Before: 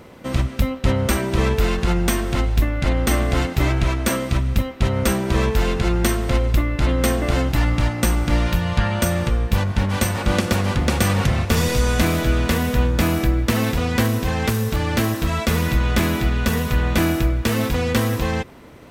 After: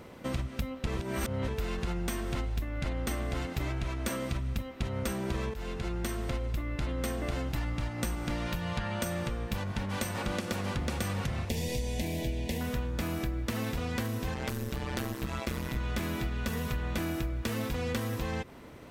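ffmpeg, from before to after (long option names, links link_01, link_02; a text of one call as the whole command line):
ffmpeg -i in.wav -filter_complex "[0:a]asettb=1/sr,asplit=3[link_01][link_02][link_03];[link_01]atrim=end=8.154[link_04];[link_02]atrim=start=8.15:end=10.76,asetpts=PTS-STARTPTS,afade=type=in:duration=0.004:curve=qsin,afade=type=out:start_time=2.606:duration=0.004:curve=qsin,equalizer=frequency=68:width=1.5:gain=-8.5[link_05];[link_03]atrim=start=10.756[link_06];[link_04][link_05]acrossfade=duration=0.004:curve1=hsin:curve2=qsin[link_07];[link_07][link_06]acrossfade=duration=0.004:curve1=qsin:curve2=hsin,asettb=1/sr,asplit=3[link_08][link_09][link_10];[link_08]atrim=end=11.494[link_11];[link_09]atrim=start=11.49:end=12.61,asetpts=PTS-STARTPTS,afade=type=in:duration=0.004:curve=qsin,afade=type=out:start_time=1.116:duration=0.004:curve=qsin,asuperstop=centerf=1300:order=4:qfactor=1.2[link_12];[link_10]atrim=start=12.606[link_13];[link_11][link_12]acrossfade=duration=0.004:curve1=hsin:curve2=qsin[link_14];[link_14][link_13]acrossfade=duration=0.004:curve1=qsin:curve2=hsin,asettb=1/sr,asplit=3[link_15][link_16][link_17];[link_15]atrim=end=14.344[link_18];[link_16]atrim=start=14.34:end=15.77,asetpts=PTS-STARTPTS,afade=type=in:duration=0.004:curve=qsin,afade=type=out:start_time=1.426:duration=0.004:curve=qsin,tremolo=f=130:d=0.889[link_19];[link_17]atrim=start=15.766[link_20];[link_18][link_19]acrossfade=duration=0.004:curve1=hsin:curve2=qsin[link_21];[link_21][link_20]acrossfade=duration=0.004:curve1=qsin:curve2=hsin,asplit=4[link_22][link_23][link_24][link_25];[link_22]atrim=end=0.872[link_26];[link_23]atrim=start=0.868:end=1.482,asetpts=PTS-STARTPTS,areverse[link_27];[link_24]atrim=start=1.478:end=5.54,asetpts=PTS-STARTPTS,afade=type=out:start_time=4.058:duration=0.004:curve=hsin:silence=0.211349[link_28];[link_25]atrim=start=5.54,asetpts=PTS-STARTPTS,afade=type=in:duration=1.68:curve=qsin:silence=0.211349[link_29];[link_26][link_27]acrossfade=duration=0.004:curve1=hsin:curve2=hsin[link_30];[link_28][link_29]concat=n=2:v=0:a=1[link_31];[link_30][link_31]acrossfade=duration=0.004:curve1=hsin:curve2=hsin,acompressor=threshold=-24dB:ratio=6,volume=-5.5dB" out.wav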